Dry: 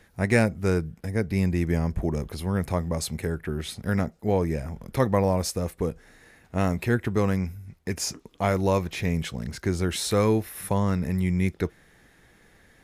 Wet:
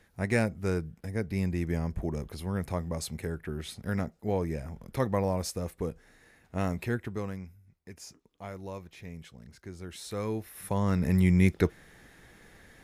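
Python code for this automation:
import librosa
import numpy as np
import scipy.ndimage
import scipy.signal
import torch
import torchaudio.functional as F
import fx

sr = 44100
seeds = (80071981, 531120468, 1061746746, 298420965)

y = fx.gain(x, sr, db=fx.line((6.82, -6.0), (7.63, -17.5), (9.74, -17.5), (10.64, -7.0), (11.15, 2.0)))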